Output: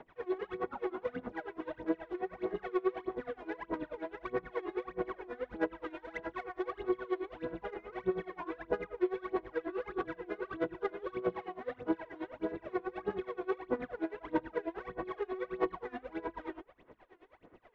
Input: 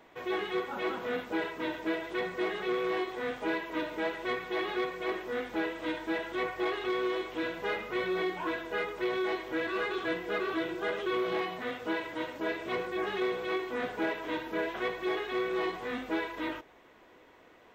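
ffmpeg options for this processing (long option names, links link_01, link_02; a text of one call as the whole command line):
ffmpeg -i in.wav -filter_complex "[0:a]asettb=1/sr,asplit=3[link_01][link_02][link_03];[link_01]atrim=end=5.904[link_04];[link_02]atrim=start=5.9:end=6.63,asetpts=PTS-STARTPTS,afade=type=in:duration=0.004:curve=qsin,afade=type=out:start_time=0.726:duration=0.004:curve=qsin,tiltshelf=frequency=910:gain=-4[link_05];[link_03]atrim=start=6.626[link_06];[link_04][link_05]acrossfade=duration=0.004:curve1=hsin:curve2=qsin[link_07];[link_07][link_06]acrossfade=duration=0.004:curve1=qsin:curve2=hsin,acrossover=split=390|1600[link_08][link_09][link_10];[link_08]acompressor=threshold=-39dB:ratio=4[link_11];[link_09]acompressor=threshold=-37dB:ratio=4[link_12];[link_10]acompressor=threshold=-54dB:ratio=4[link_13];[link_11][link_12][link_13]amix=inputs=3:normalize=0,aphaser=in_gain=1:out_gain=1:delay=2.9:decay=0.73:speed=1.6:type=sinusoidal,adynamicsmooth=sensitivity=2.5:basefreq=2700,aeval=exprs='val(0)*pow(10,-21*(0.5-0.5*cos(2*PI*9.4*n/s))/20)':channel_layout=same" out.wav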